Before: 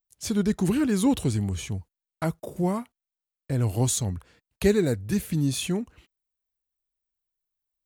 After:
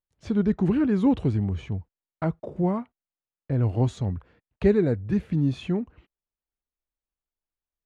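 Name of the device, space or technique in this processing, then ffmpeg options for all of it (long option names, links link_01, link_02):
phone in a pocket: -af "lowpass=3200,highshelf=frequency=2200:gain=-11,volume=1.5dB"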